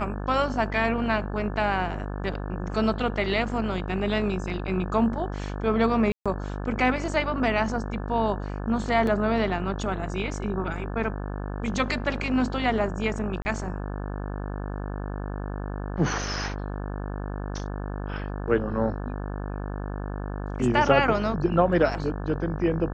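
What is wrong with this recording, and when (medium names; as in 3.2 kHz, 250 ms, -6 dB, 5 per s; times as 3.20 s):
buzz 50 Hz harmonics 35 -32 dBFS
6.12–6.26 s: dropout 136 ms
9.07 s: dropout 2.4 ms
13.42–13.45 s: dropout 30 ms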